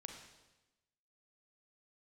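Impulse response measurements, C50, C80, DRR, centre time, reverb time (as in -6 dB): 4.5 dB, 7.0 dB, 3.0 dB, 35 ms, 1.0 s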